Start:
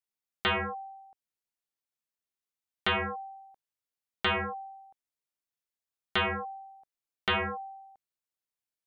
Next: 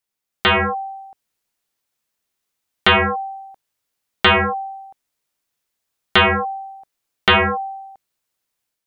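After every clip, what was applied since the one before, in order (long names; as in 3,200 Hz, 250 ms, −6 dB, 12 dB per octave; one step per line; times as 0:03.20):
automatic gain control gain up to 5.5 dB
level +9 dB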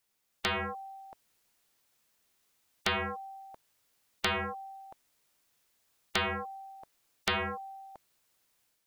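every bin compressed towards the loudest bin 2 to 1
level −7 dB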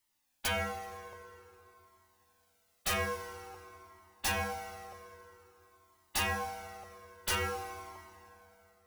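wrap-around overflow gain 26 dB
feedback delay network reverb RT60 3.4 s, high-frequency decay 0.65×, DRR 6.5 dB
flanger whose copies keep moving one way falling 0.5 Hz
level +3.5 dB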